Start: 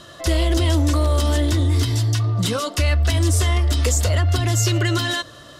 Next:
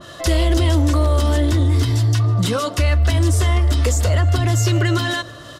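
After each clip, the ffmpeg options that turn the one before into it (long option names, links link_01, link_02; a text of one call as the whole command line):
ffmpeg -i in.wav -filter_complex "[0:a]asplit=2[link_01][link_02];[link_02]alimiter=limit=-19dB:level=0:latency=1,volume=-3dB[link_03];[link_01][link_03]amix=inputs=2:normalize=0,aecho=1:1:153|306|459|612:0.0668|0.0394|0.0233|0.0137,adynamicequalizer=threshold=0.0158:dfrequency=2300:dqfactor=0.7:tfrequency=2300:tqfactor=0.7:attack=5:release=100:ratio=0.375:range=2.5:mode=cutabove:tftype=highshelf" out.wav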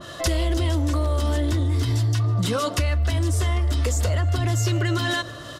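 ffmpeg -i in.wav -af "acompressor=threshold=-19dB:ratio=6" out.wav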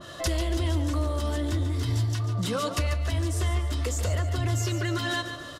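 ffmpeg -i in.wav -af "aecho=1:1:142|284|426|568|710:0.316|0.136|0.0585|0.0251|0.0108,volume=-4.5dB" out.wav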